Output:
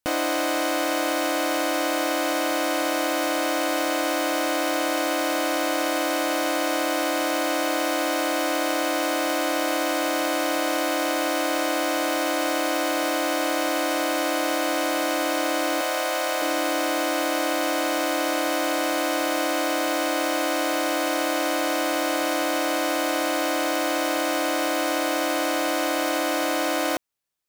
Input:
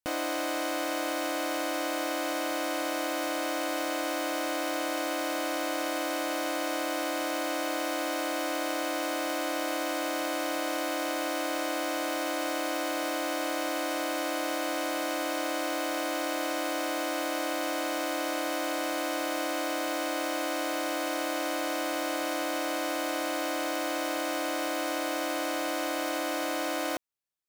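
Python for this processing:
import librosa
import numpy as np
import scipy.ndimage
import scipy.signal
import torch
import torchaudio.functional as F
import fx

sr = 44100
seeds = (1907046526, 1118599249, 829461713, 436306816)

y = fx.steep_highpass(x, sr, hz=370.0, slope=36, at=(15.81, 16.42))
y = y * librosa.db_to_amplitude(7.0)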